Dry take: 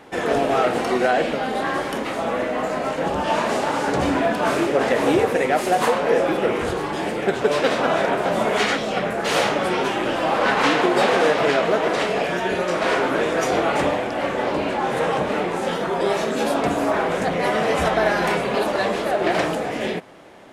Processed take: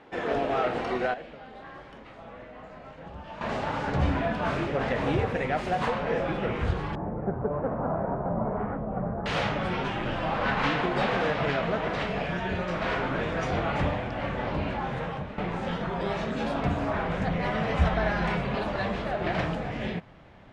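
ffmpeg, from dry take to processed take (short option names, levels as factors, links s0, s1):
-filter_complex "[0:a]asettb=1/sr,asplit=3[s0][s1][s2];[s0]atrim=end=6.954[s3];[s1]atrim=start=6.95:end=9.26,asetpts=PTS-STARTPTS,afade=t=in:d=0.004:c=qsin,afade=t=out:st=2.306:d=0.004:c=qsin,lowpass=f=1100:w=0.5412,lowpass=f=1100:w=1.3066[s4];[s2]atrim=start=9.256[s5];[s3][s4]acrossfade=d=0.004:c1=hsin:c2=qsin[s6];[s6][s5]acrossfade=d=0.004:c1=qsin:c2=hsin,asplit=4[s7][s8][s9][s10];[s7]atrim=end=1.14,asetpts=PTS-STARTPTS,afade=t=out:st=0.86:d=0.28:c=log:silence=0.223872[s11];[s8]atrim=start=1.14:end=3.41,asetpts=PTS-STARTPTS,volume=0.224[s12];[s9]atrim=start=3.41:end=15.38,asetpts=PTS-STARTPTS,afade=t=in:d=0.28:c=log:silence=0.223872,afade=t=out:st=11.34:d=0.63:silence=0.266073[s13];[s10]atrim=start=15.38,asetpts=PTS-STARTPTS,afade=t=in:d=0.004:c=hsin:silence=0.266073[s14];[s11][s12][s13][s14]concat=n=4:v=0:a=1,lowpass=3800,asubboost=boost=8.5:cutoff=120,volume=0.447"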